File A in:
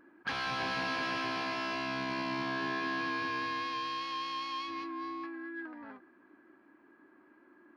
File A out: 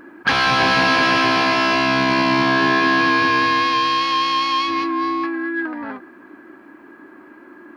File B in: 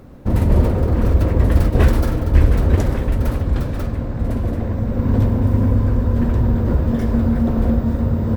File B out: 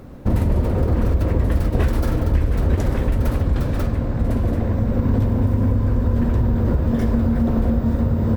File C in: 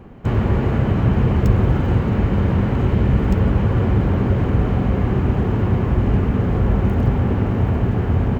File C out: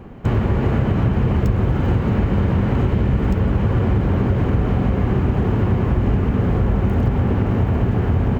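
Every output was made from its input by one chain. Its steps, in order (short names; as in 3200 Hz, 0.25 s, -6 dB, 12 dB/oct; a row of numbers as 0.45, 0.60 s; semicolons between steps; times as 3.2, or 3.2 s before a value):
compressor, threshold -16 dBFS; normalise peaks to -6 dBFS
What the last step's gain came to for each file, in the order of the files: +18.5, +2.0, +3.0 dB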